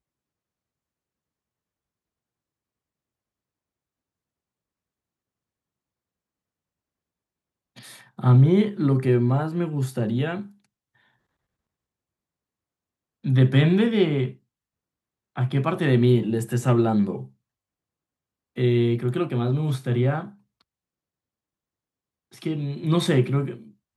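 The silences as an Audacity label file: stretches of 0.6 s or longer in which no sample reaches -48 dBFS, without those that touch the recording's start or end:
10.520000	13.240000	silence
14.360000	15.360000	silence
17.300000	18.560000	silence
20.610000	22.320000	silence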